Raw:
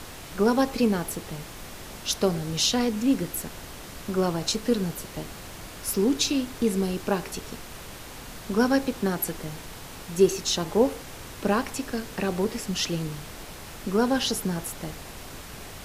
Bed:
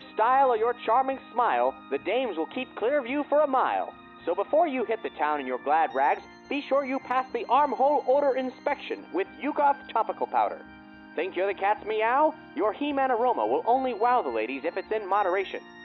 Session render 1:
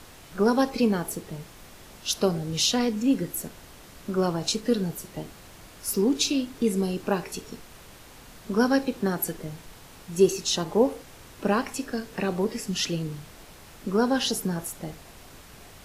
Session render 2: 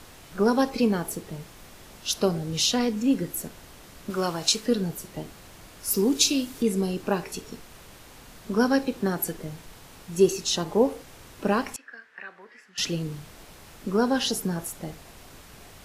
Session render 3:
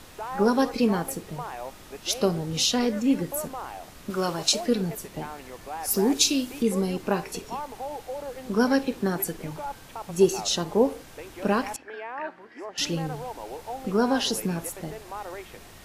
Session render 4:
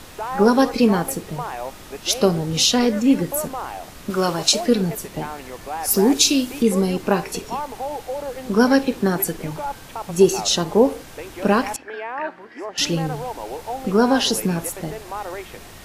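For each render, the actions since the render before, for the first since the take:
noise print and reduce 7 dB
4.10–4.66 s: tilt shelf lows -5.5 dB, about 760 Hz; 5.90–6.61 s: treble shelf 6.5 kHz -> 4.3 kHz +9.5 dB; 11.76–12.78 s: band-pass filter 1.7 kHz, Q 4
add bed -12.5 dB
trim +6.5 dB; peak limiter -3 dBFS, peak gain reduction 2.5 dB

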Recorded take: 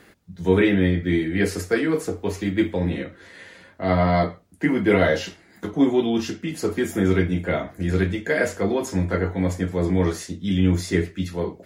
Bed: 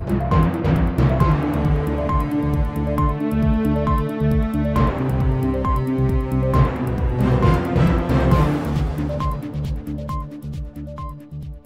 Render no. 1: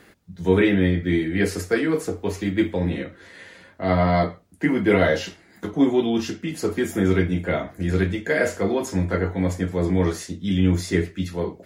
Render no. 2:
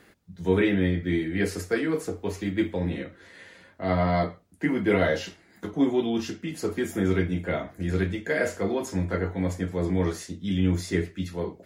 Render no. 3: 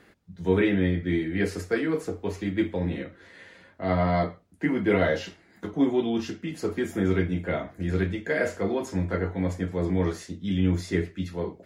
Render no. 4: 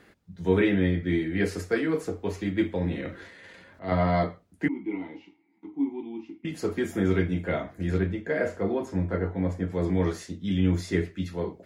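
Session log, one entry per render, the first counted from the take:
8.26–8.82 s: doubling 47 ms -12 dB
trim -4.5 dB
treble shelf 6.5 kHz -8 dB
3.00–3.92 s: transient shaper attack -10 dB, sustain +9 dB; 4.68–6.45 s: vowel filter u; 7.98–9.70 s: treble shelf 2.2 kHz -10 dB

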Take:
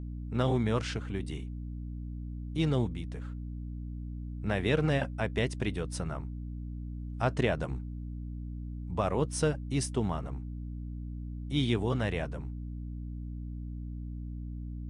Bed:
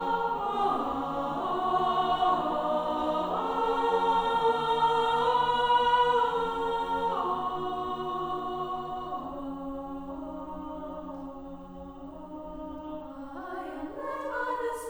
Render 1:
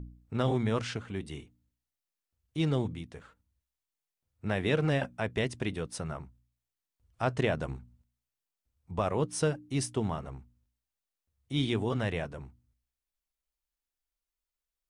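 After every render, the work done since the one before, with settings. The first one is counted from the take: de-hum 60 Hz, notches 5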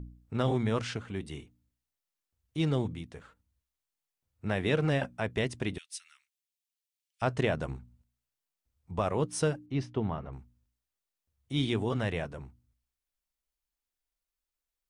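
5.78–7.22 s: inverse Chebyshev high-pass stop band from 670 Hz, stop band 60 dB; 9.66–10.33 s: distance through air 250 m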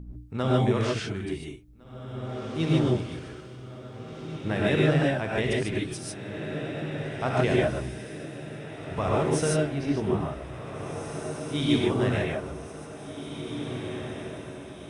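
echo that smears into a reverb 1907 ms, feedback 56%, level -9 dB; gated-style reverb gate 170 ms rising, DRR -3.5 dB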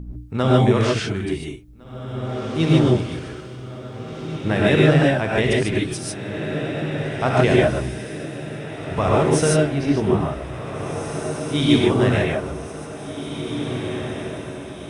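trim +7.5 dB

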